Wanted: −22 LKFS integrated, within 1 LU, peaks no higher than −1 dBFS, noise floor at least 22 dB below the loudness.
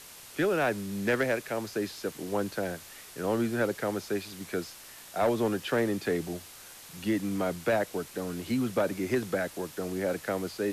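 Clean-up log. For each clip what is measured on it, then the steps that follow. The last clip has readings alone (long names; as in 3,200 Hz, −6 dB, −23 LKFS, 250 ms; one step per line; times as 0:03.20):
share of clipped samples 0.5%; peaks flattened at −19.5 dBFS; background noise floor −49 dBFS; target noise floor −53 dBFS; integrated loudness −31.0 LKFS; sample peak −19.5 dBFS; target loudness −22.0 LKFS
→ clipped peaks rebuilt −19.5 dBFS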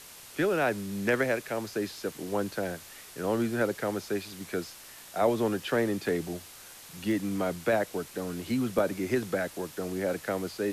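share of clipped samples 0.0%; background noise floor −49 dBFS; target noise floor −53 dBFS
→ noise reduction from a noise print 6 dB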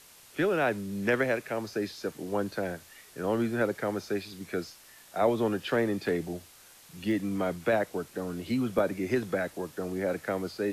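background noise floor −55 dBFS; integrated loudness −31.0 LKFS; sample peak −11.0 dBFS; target loudness −22.0 LKFS
→ level +9 dB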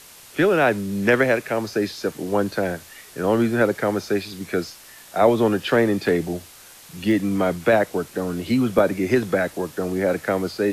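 integrated loudness −22.0 LKFS; sample peak −2.0 dBFS; background noise floor −46 dBFS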